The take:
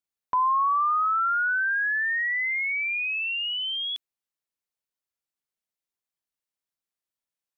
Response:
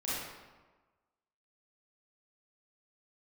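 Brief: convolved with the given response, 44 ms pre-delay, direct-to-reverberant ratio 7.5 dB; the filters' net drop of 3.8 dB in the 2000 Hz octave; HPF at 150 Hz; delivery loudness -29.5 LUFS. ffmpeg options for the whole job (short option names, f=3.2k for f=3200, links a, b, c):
-filter_complex "[0:a]highpass=150,equalizer=f=2k:t=o:g=-5,asplit=2[a][b];[1:a]atrim=start_sample=2205,adelay=44[c];[b][c]afir=irnorm=-1:irlink=0,volume=-12.5dB[d];[a][d]amix=inputs=2:normalize=0,volume=-3.5dB"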